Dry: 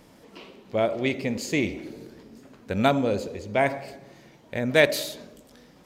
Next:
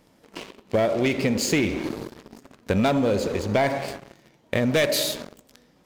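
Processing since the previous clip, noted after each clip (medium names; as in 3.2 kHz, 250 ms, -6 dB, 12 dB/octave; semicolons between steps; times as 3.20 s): waveshaping leveller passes 3; compression 4:1, threshold -20 dBFS, peak gain reduction 9.5 dB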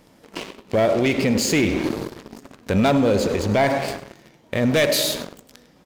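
peak limiter -17.5 dBFS, peak gain reduction 7 dB; delay 101 ms -17 dB; trim +5.5 dB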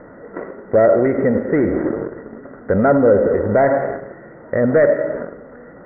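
jump at every zero crossing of -38.5 dBFS; rippled Chebyshev low-pass 2 kHz, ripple 9 dB; trim +8 dB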